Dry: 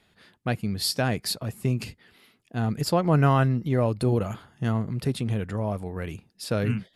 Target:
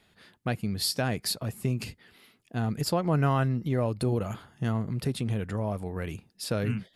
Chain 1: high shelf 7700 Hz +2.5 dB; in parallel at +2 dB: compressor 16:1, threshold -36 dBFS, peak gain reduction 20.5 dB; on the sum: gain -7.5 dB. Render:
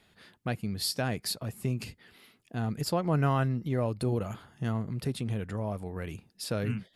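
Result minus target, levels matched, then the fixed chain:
compressor: peak gain reduction +9 dB
high shelf 7700 Hz +2.5 dB; in parallel at +2 dB: compressor 16:1, threshold -26.5 dBFS, peak gain reduction 11.5 dB; on the sum: gain -7.5 dB

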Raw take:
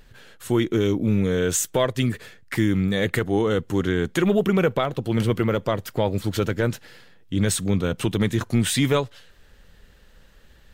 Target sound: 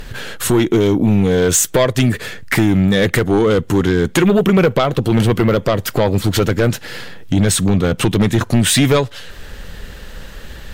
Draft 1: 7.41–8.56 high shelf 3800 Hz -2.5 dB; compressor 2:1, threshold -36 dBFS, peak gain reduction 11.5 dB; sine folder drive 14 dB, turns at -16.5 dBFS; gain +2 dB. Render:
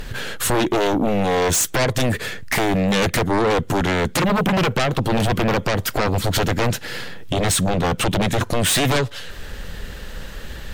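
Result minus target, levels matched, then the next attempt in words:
sine folder: distortion +16 dB
7.41–8.56 high shelf 3800 Hz -2.5 dB; compressor 2:1, threshold -36 dBFS, peak gain reduction 11.5 dB; sine folder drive 14 dB, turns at -9 dBFS; gain +2 dB

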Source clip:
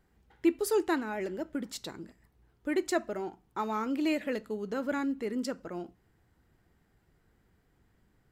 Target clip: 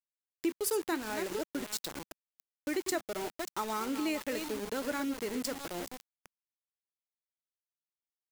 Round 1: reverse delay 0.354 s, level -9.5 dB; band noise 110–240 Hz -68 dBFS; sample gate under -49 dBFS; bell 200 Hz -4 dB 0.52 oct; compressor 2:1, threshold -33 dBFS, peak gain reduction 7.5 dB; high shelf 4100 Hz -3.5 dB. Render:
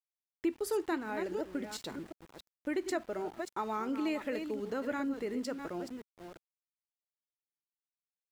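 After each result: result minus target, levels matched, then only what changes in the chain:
8000 Hz band -9.0 dB; sample gate: distortion -13 dB
change: high shelf 4100 Hz +8.5 dB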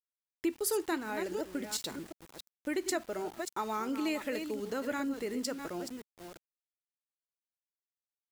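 sample gate: distortion -13 dB
change: sample gate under -37.5 dBFS

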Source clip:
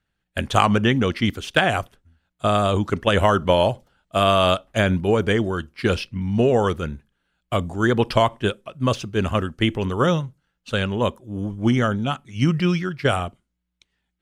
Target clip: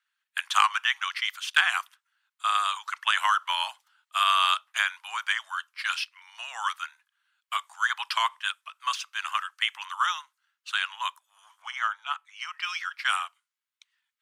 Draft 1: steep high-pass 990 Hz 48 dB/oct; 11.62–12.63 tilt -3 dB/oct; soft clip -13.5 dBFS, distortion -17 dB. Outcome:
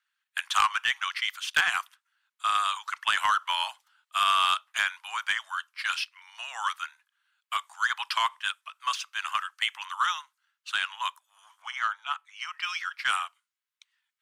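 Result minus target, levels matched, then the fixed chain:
soft clip: distortion +13 dB
steep high-pass 990 Hz 48 dB/oct; 11.62–12.63 tilt -3 dB/oct; soft clip -4.5 dBFS, distortion -29 dB

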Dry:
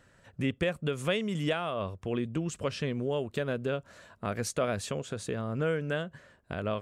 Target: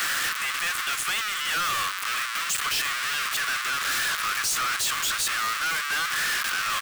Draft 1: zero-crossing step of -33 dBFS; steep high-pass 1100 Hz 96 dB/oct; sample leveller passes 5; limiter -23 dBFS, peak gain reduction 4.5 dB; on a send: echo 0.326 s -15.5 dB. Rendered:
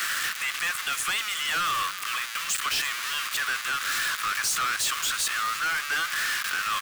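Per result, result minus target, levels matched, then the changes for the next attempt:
echo-to-direct +7 dB; zero-crossing step: distortion -6 dB
change: echo 0.326 s -22.5 dB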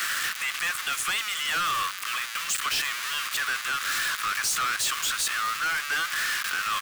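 zero-crossing step: distortion -6 dB
change: zero-crossing step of -24 dBFS

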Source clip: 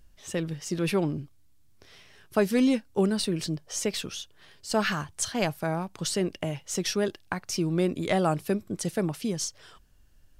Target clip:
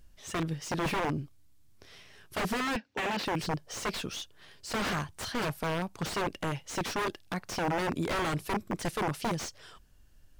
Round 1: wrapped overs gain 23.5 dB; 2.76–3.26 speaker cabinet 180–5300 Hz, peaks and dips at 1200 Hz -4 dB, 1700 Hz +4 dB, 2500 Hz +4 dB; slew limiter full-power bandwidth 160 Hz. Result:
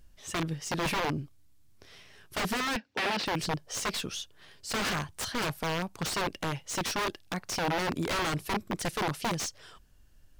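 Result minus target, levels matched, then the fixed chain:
slew limiter: distortion -5 dB
wrapped overs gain 23.5 dB; 2.76–3.26 speaker cabinet 180–5300 Hz, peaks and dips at 1200 Hz -4 dB, 1700 Hz +4 dB, 2500 Hz +4 dB; slew limiter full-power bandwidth 72 Hz

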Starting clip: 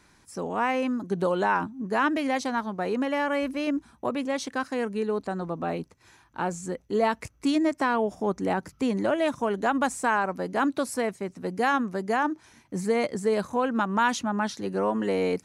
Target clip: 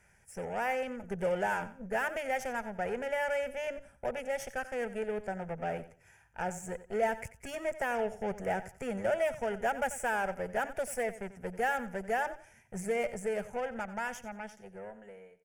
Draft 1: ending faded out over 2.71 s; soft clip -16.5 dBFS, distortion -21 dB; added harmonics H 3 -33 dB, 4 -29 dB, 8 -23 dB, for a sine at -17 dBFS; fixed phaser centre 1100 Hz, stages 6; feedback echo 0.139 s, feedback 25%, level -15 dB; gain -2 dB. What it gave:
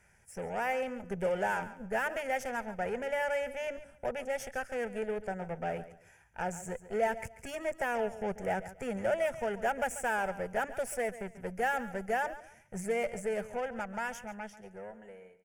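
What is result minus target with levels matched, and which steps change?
echo 49 ms late
change: feedback echo 90 ms, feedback 25%, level -15 dB

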